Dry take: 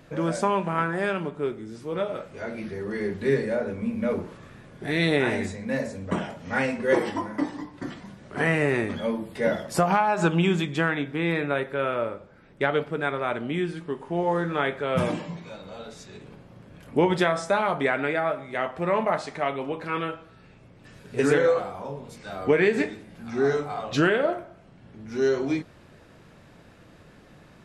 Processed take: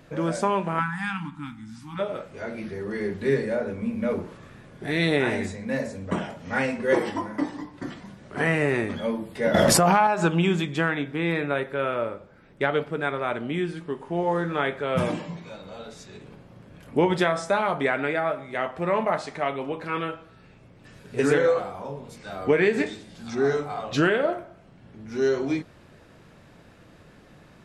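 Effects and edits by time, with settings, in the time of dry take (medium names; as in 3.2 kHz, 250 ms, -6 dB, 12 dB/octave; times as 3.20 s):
0.79–1.99 s: spectral selection erased 320–760 Hz
9.54–10.07 s: level flattener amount 100%
22.86–23.35 s: high-order bell 5.3 kHz +10.5 dB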